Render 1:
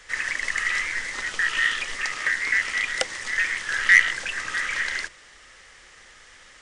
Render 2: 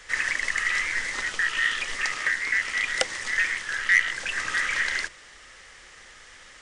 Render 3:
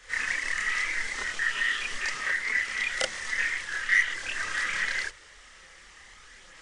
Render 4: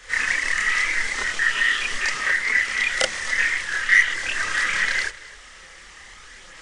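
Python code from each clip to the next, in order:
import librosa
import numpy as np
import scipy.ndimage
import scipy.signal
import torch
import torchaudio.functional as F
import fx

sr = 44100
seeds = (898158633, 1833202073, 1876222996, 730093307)

y1 = fx.rider(x, sr, range_db=4, speed_s=0.5)
y1 = y1 * librosa.db_to_amplitude(-2.0)
y2 = fx.chorus_voices(y1, sr, voices=4, hz=0.55, base_ms=29, depth_ms=3.1, mix_pct=55)
y3 = y2 + 10.0 ** (-21.0 / 20.0) * np.pad(y2, (int(264 * sr / 1000.0), 0))[:len(y2)]
y3 = y3 * librosa.db_to_amplitude(7.0)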